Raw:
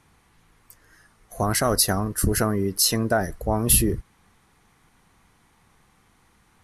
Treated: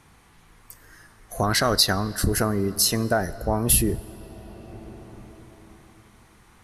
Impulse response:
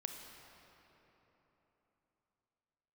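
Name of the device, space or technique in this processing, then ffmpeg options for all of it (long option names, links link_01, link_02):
ducked reverb: -filter_complex "[0:a]asettb=1/sr,asplit=3[link_01][link_02][link_03];[link_01]atrim=end=1.434[link_04];[link_02]atrim=start=1.43:end=2.24,asetpts=PTS-STARTPTS,afade=type=in:duration=0.004:curve=qsin,afade=type=out:start_time=0.806:duration=0.004:curve=qsin,equalizer=frequency=1600:width_type=o:width=0.67:gain=5,equalizer=frequency=4000:width_type=o:width=0.67:gain=11,equalizer=frequency=10000:width_type=o:width=0.67:gain=-6[link_05];[link_03]atrim=start=2.236[link_06];[link_04][link_05]acrossfade=duration=0.004:curve1=hsin:curve2=qsin[link_07];[link_07][link_06]acrossfade=duration=0.004:curve1=qsin:curve2=hsin,asplit=3[link_08][link_09][link_10];[1:a]atrim=start_sample=2205[link_11];[link_09][link_11]afir=irnorm=-1:irlink=0[link_12];[link_10]apad=whole_len=292787[link_13];[link_12][link_13]sidechaincompress=threshold=-30dB:ratio=12:attack=16:release=1060,volume=5.5dB[link_14];[link_08][link_14]amix=inputs=2:normalize=0,volume=-2.5dB"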